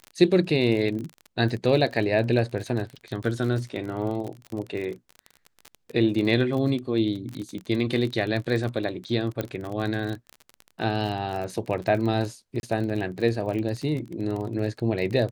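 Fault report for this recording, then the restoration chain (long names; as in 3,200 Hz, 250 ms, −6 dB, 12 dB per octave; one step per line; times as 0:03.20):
surface crackle 33 per second −30 dBFS
0:09.41: click −14 dBFS
0:12.60–0:12.63: drop-out 31 ms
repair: click removal
repair the gap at 0:12.60, 31 ms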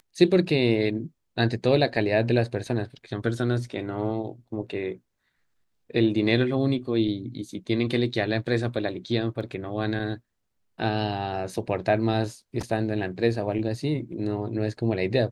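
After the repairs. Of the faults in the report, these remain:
0:09.41: click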